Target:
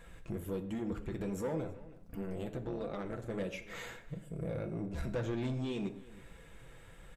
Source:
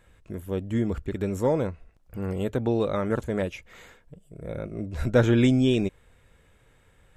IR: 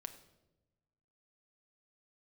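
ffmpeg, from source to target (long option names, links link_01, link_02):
-filter_complex "[0:a]acompressor=threshold=-40dB:ratio=3,asettb=1/sr,asplit=3[link_01][link_02][link_03];[link_01]atrim=end=1.624[link_04];[link_02]atrim=start=1.62:end=3.29,asetpts=PTS-STARTPTS,afade=type=in:duration=0.004:curve=qsin,afade=type=out:start_time=1.666:duration=0.004:curve=qsin,tremolo=f=190:d=0.857[link_05];[link_03]atrim=start=3.286[link_06];[link_04][link_05]acrossfade=duration=0.004:curve1=hsin:curve2=qsin[link_07];[link_07][link_06]acrossfade=duration=0.004:curve1=qsin:curve2=hsin,flanger=delay=4.2:depth=4.4:regen=-43:speed=1.4:shape=sinusoidal,asoftclip=type=tanh:threshold=-39dB,asplit=2[link_08][link_09];[link_09]adelay=320.7,volume=-19dB,highshelf=frequency=4000:gain=-7.22[link_10];[link_08][link_10]amix=inputs=2:normalize=0[link_11];[1:a]atrim=start_sample=2205,afade=type=out:start_time=0.21:duration=0.01,atrim=end_sample=9702[link_12];[link_11][link_12]afir=irnorm=-1:irlink=0,volume=12.5dB"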